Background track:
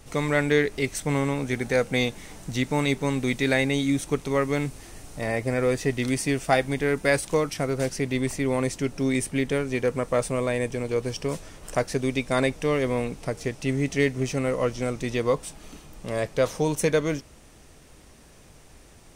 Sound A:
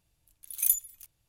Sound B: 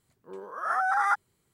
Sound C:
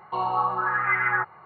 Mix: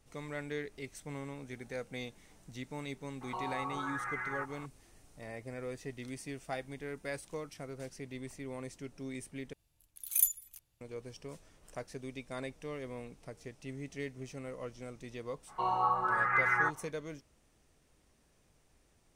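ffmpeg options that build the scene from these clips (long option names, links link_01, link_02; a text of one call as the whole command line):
ffmpeg -i bed.wav -i cue0.wav -i cue1.wav -i cue2.wav -filter_complex "[3:a]asplit=2[link_01][link_02];[0:a]volume=-18dB[link_03];[link_01]acompressor=threshold=-35dB:ratio=6:attack=3.2:release=140:knee=1:detection=peak[link_04];[link_03]asplit=2[link_05][link_06];[link_05]atrim=end=9.534[link_07];[1:a]atrim=end=1.28,asetpts=PTS-STARTPTS,volume=-3dB[link_08];[link_06]atrim=start=10.806[link_09];[link_04]atrim=end=1.45,asetpts=PTS-STARTPTS,volume=-1.5dB,afade=type=in:duration=0.004:curve=hsin,afade=type=out:start_time=1.446:duration=0.004:curve=hsin,adelay=141561S[link_10];[link_02]atrim=end=1.45,asetpts=PTS-STARTPTS,volume=-5.5dB,afade=type=in:duration=0.05,afade=type=out:start_time=1.4:duration=0.05,adelay=15460[link_11];[link_07][link_08]acrossfade=duration=0.004:curve1=hsin:curve2=hsin[link_12];[link_12][link_09]acrossfade=duration=0.004:curve1=hsin:curve2=hsin[link_13];[link_13][link_10][link_11]amix=inputs=3:normalize=0" out.wav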